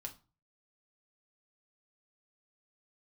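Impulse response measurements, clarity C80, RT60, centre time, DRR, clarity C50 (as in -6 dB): 21.5 dB, 0.35 s, 9 ms, 1.5 dB, 15.0 dB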